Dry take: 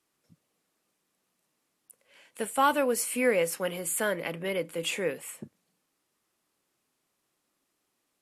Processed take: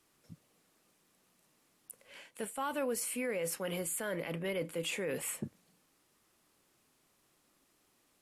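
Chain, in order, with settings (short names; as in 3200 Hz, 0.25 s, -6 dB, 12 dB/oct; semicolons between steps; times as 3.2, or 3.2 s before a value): low shelf 110 Hz +7.5 dB; reverse; compressor 4:1, threshold -39 dBFS, peak gain reduction 17 dB; reverse; limiter -32.5 dBFS, peak gain reduction 6.5 dB; gain +5.5 dB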